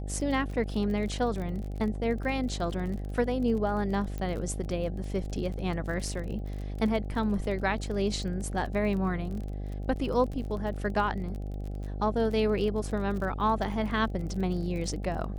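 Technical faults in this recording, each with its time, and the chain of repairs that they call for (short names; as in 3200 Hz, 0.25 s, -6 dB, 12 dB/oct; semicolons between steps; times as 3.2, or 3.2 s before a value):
buzz 50 Hz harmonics 16 -35 dBFS
crackle 32/s -36 dBFS
4.18 pop -23 dBFS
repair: de-click; de-hum 50 Hz, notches 16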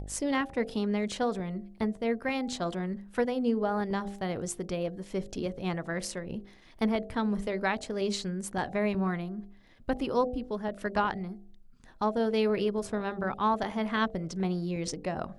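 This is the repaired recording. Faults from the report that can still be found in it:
4.18 pop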